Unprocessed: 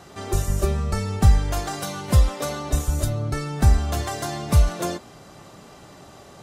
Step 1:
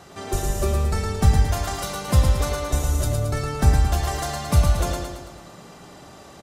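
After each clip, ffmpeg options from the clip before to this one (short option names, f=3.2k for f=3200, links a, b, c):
-filter_complex "[0:a]bandreject=f=50:t=h:w=6,bandreject=f=100:t=h:w=6,bandreject=f=150:t=h:w=6,bandreject=f=200:t=h:w=6,bandreject=f=250:t=h:w=6,bandreject=f=300:t=h:w=6,bandreject=f=350:t=h:w=6,asplit=2[a][b];[b]aecho=0:1:111|222|333|444|555|666|777:0.596|0.316|0.167|0.0887|0.047|0.0249|0.0132[c];[a][c]amix=inputs=2:normalize=0"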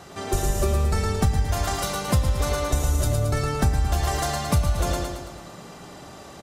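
-af "acompressor=threshold=-19dB:ratio=6,volume=2dB"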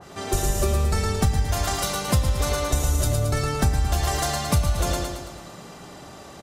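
-af "adynamicequalizer=threshold=0.00794:dfrequency=2200:dqfactor=0.7:tfrequency=2200:tqfactor=0.7:attack=5:release=100:ratio=0.375:range=1.5:mode=boostabove:tftype=highshelf"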